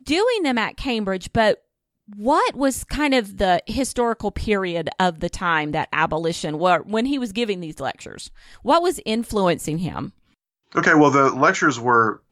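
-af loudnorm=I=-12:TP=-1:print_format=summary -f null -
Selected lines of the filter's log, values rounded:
Input Integrated:    -20.0 LUFS
Input True Peak:      -3.3 dBTP
Input LRA:             3.6 LU
Input Threshold:     -30.5 LUFS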